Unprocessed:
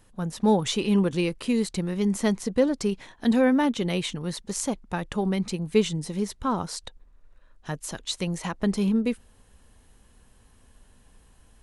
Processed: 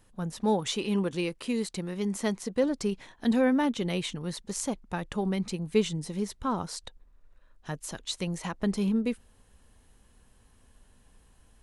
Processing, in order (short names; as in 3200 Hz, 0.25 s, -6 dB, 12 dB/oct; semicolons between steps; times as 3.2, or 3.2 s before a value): 0.43–2.64 low shelf 150 Hz -8.5 dB; gain -3.5 dB